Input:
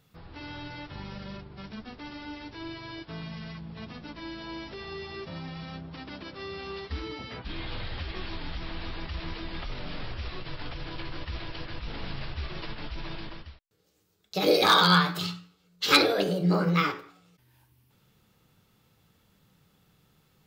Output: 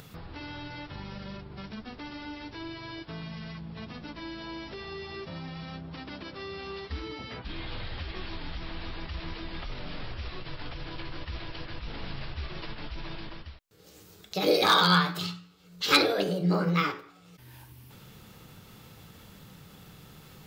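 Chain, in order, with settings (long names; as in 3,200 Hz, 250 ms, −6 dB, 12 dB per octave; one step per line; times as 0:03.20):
upward compression, threshold −34 dBFS
level −1.5 dB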